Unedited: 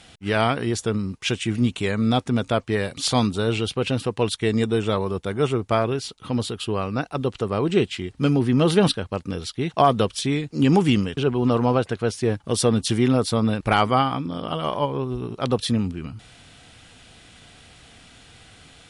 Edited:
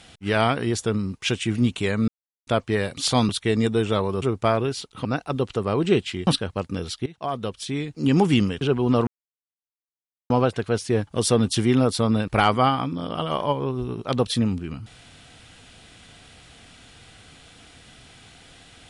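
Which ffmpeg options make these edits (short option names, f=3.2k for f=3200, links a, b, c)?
-filter_complex "[0:a]asplit=9[a][b][c][d][e][f][g][h][i];[a]atrim=end=2.08,asetpts=PTS-STARTPTS,afade=t=out:st=2.076:d=0.004:c=hsin[j];[b]atrim=start=2.08:end=2.47,asetpts=PTS-STARTPTS,volume=0[k];[c]atrim=start=2.47:end=3.292,asetpts=PTS-STARTPTS,afade=t=in:d=0.004:c=hsin[l];[d]atrim=start=4.258:end=5.192[m];[e]atrim=start=5.488:end=6.322[n];[f]atrim=start=6.898:end=8.122[o];[g]atrim=start=8.828:end=9.62,asetpts=PTS-STARTPTS,afade=t=out:st=0.788:d=0.004:c=hsin:silence=0.11885[p];[h]atrim=start=9.62:end=11.63,asetpts=PTS-STARTPTS,afade=t=in:d=1.31:silence=0.11885,afade=t=out:st=2.006:d=0.004:c=hsin,apad=pad_dur=1.23[q];[i]atrim=start=11.63,asetpts=PTS-STARTPTS,afade=t=in:d=0.004:c=hsin[r];[j][k][l]concat=n=3:v=0:a=1[s];[s][m]acrossfade=d=0.004:c1=hsin:c2=hsin[t];[t][n]acrossfade=d=0.004:c1=hsin:c2=hsin[u];[u][o]acrossfade=d=0.004:c1=hsin:c2=hsin[v];[p][q][r]concat=n=3:v=0:a=1[w];[v][w]acrossfade=d=0.004:c1=hsin:c2=hsin"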